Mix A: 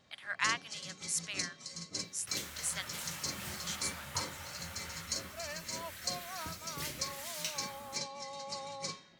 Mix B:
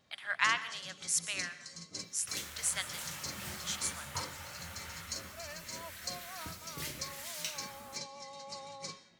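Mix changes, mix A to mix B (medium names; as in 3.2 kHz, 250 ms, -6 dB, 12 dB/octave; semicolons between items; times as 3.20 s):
first sound -5.0 dB; reverb: on, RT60 0.60 s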